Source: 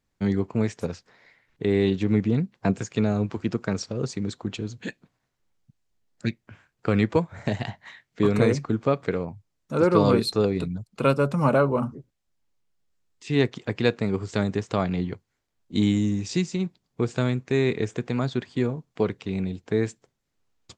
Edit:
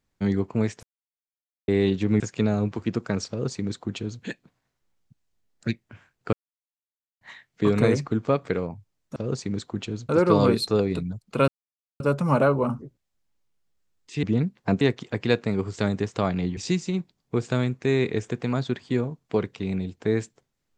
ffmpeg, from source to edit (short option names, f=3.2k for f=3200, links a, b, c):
-filter_complex "[0:a]asplit=12[a][b][c][d][e][f][g][h][i][j][k][l];[a]atrim=end=0.83,asetpts=PTS-STARTPTS,afade=t=out:st=0.826:d=0.004:c=hsin[m];[b]atrim=start=0.83:end=1.68,asetpts=PTS-STARTPTS,volume=0[n];[c]atrim=start=1.68:end=2.202,asetpts=PTS-STARTPTS,afade=t=in:d=0.004:c=hsin[o];[d]atrim=start=2.778:end=6.91,asetpts=PTS-STARTPTS,afade=t=out:st=4.128:d=0.004:c=hsin[p];[e]atrim=start=6.91:end=7.79,asetpts=PTS-STARTPTS,volume=0[q];[f]atrim=start=7.79:end=9.742,asetpts=PTS-STARTPTS,afade=t=in:d=0.004:c=hsin[r];[g]atrim=start=3.868:end=4.802[s];[h]atrim=start=9.738:end=11.13,asetpts=PTS-STARTPTS,afade=t=out:st=1.388:d=0.004:c=hsin,apad=pad_dur=0.52[t];[i]atrim=start=11.13:end=13.362,asetpts=PTS-STARTPTS,afade=t=in:d=0.004:c=hsin[u];[j]atrim=start=2.198:end=2.782[v];[k]atrim=start=13.358:end=15.122[w];[l]atrim=start=16.228[x];[m][n][o]concat=n=3:v=0:a=1[y];[p][q][r]concat=n=3:v=0:a=1[z];[y][z]acrossfade=d=0.004:c1=hsin:c2=hsin[aa];[aa][s]acrossfade=d=0.004:c1=hsin:c2=hsin[ab];[t][u]concat=n=2:v=0:a=1[ac];[ab][ac]acrossfade=d=0.004:c1=hsin:c2=hsin[ad];[ad][v]acrossfade=d=0.004:c1=hsin:c2=hsin[ae];[ae][w]acrossfade=d=0.004:c1=hsin:c2=hsin[af];[af][x]acrossfade=d=0.004:c1=hsin:c2=hsin"